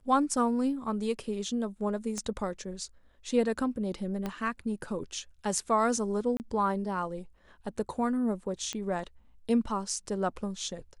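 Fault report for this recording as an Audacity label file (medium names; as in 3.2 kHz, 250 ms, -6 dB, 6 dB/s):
2.180000	2.180000	pop -23 dBFS
4.260000	4.260000	pop -20 dBFS
6.370000	6.400000	dropout 29 ms
8.730000	8.730000	pop -21 dBFS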